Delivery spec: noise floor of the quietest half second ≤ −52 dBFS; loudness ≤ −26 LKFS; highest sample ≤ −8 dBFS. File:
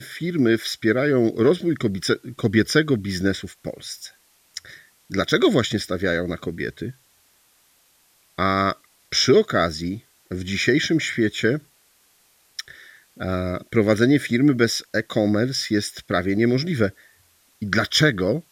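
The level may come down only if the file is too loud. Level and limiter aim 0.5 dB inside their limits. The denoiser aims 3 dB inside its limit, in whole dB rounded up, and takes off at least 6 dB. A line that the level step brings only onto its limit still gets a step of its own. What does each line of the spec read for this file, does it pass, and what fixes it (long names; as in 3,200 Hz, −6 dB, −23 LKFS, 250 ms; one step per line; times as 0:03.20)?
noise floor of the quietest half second −60 dBFS: in spec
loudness −21.5 LKFS: out of spec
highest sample −4.5 dBFS: out of spec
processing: level −5 dB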